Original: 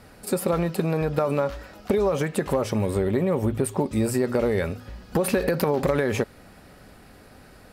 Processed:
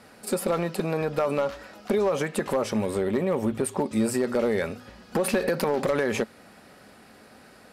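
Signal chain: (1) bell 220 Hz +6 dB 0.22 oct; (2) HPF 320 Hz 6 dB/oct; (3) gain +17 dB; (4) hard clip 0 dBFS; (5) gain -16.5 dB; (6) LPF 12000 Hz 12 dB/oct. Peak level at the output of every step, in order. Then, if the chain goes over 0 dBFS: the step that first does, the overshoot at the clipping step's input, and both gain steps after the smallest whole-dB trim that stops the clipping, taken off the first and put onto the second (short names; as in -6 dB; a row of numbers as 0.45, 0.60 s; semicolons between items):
-9.0, -10.0, +7.0, 0.0, -16.5, -16.0 dBFS; step 3, 7.0 dB; step 3 +10 dB, step 5 -9.5 dB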